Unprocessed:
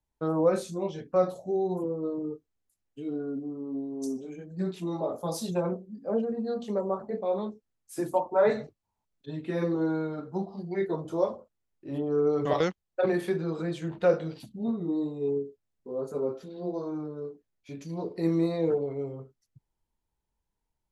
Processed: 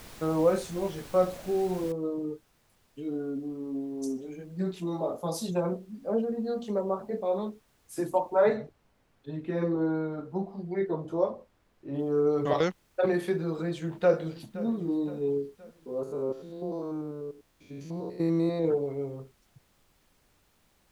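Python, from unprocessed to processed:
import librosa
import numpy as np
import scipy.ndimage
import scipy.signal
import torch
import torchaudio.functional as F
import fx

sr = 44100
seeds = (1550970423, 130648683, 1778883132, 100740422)

y = fx.noise_floor_step(x, sr, seeds[0], at_s=1.92, before_db=-47, after_db=-67, tilt_db=3.0)
y = fx.high_shelf(y, sr, hz=3500.0, db=-11.5, at=(8.49, 11.99))
y = fx.echo_throw(y, sr, start_s=13.63, length_s=1.03, ms=520, feedback_pct=50, wet_db=-16.5)
y = fx.spec_steps(y, sr, hold_ms=100, at=(16.03, 18.65))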